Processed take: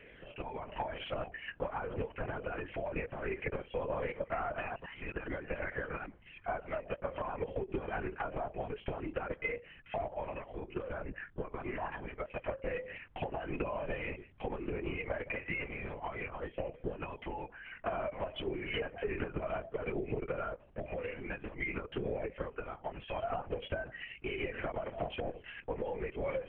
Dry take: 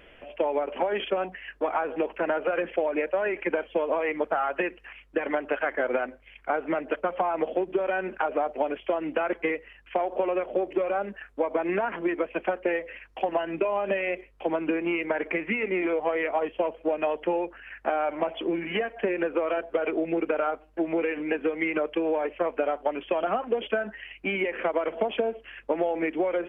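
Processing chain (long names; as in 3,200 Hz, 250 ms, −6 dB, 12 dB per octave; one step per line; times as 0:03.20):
0:03.59–0:06.06: delay that plays each chunk backwards 315 ms, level −6.5 dB
downward compressor, threshold −30 dBFS, peak gain reduction 10 dB
flanger 0.18 Hz, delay 0.4 ms, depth 2.6 ms, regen −1%
linear-prediction vocoder at 8 kHz whisper
level −1 dB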